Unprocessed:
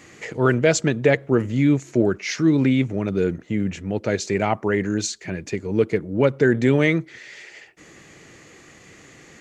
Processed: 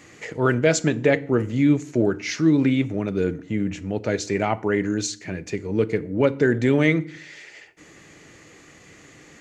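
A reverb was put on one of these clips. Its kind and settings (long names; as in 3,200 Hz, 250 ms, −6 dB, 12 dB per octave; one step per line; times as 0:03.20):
feedback delay network reverb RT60 0.5 s, low-frequency decay 1.4×, high-frequency decay 0.8×, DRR 13.5 dB
level −1.5 dB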